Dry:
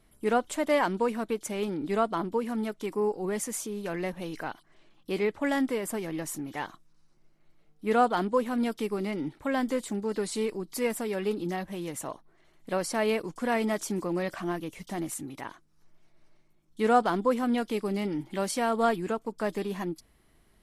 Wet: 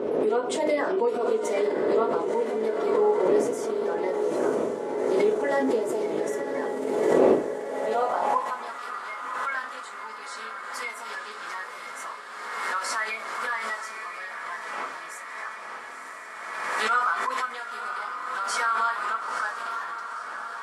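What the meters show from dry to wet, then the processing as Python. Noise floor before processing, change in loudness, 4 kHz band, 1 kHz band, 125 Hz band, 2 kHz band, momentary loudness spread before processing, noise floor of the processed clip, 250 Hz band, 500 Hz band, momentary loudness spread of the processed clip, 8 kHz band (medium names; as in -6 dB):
-64 dBFS, +3.0 dB, +2.0 dB, +3.5 dB, -9.5 dB, +6.5 dB, 11 LU, -40 dBFS, -2.5 dB, +4.5 dB, 13 LU, -1.5 dB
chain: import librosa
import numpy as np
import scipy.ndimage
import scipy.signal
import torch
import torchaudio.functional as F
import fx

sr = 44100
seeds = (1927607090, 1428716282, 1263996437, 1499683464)

p1 = fx.spec_quant(x, sr, step_db=30)
p2 = fx.dmg_wind(p1, sr, seeds[0], corner_hz=360.0, level_db=-33.0)
p3 = scipy.signal.sosfilt(scipy.signal.butter(2, 7400.0, 'lowpass', fs=sr, output='sos'), p2)
p4 = fx.room_shoebox(p3, sr, seeds[1], volume_m3=130.0, walls='furnished', distance_m=1.5)
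p5 = fx.rider(p4, sr, range_db=5, speed_s=2.0)
p6 = p5 + fx.echo_diffused(p5, sr, ms=967, feedback_pct=76, wet_db=-7, dry=0)
p7 = fx.filter_sweep_highpass(p6, sr, from_hz=410.0, to_hz=1300.0, start_s=7.47, end_s=8.87, q=3.1)
p8 = fx.pre_swell(p7, sr, db_per_s=31.0)
y = p8 * 10.0 ** (-7.5 / 20.0)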